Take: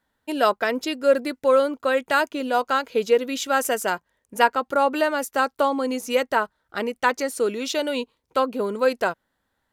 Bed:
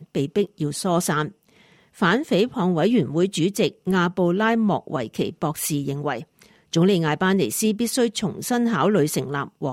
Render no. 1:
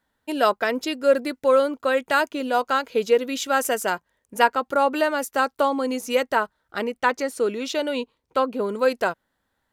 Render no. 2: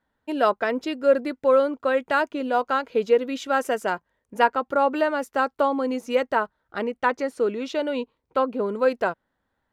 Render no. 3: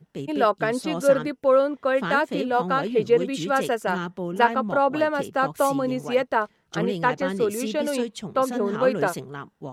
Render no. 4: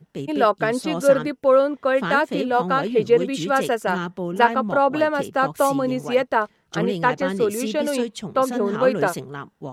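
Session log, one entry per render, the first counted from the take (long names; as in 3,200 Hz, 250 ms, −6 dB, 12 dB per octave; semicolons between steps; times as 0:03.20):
0:06.84–0:08.69: high-shelf EQ 5,000 Hz −6 dB
low-pass filter 1,900 Hz 6 dB per octave
mix in bed −10 dB
level +2.5 dB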